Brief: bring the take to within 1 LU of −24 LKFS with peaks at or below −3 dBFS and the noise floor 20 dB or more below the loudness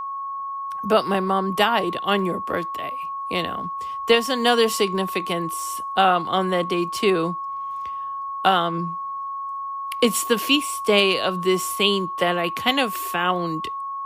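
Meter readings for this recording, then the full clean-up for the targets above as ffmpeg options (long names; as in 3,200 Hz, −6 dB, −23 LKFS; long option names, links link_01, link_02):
interfering tone 1,100 Hz; level of the tone −27 dBFS; integrated loudness −22.5 LKFS; sample peak −5.0 dBFS; target loudness −24.0 LKFS
→ -af "bandreject=frequency=1100:width=30"
-af "volume=-1.5dB"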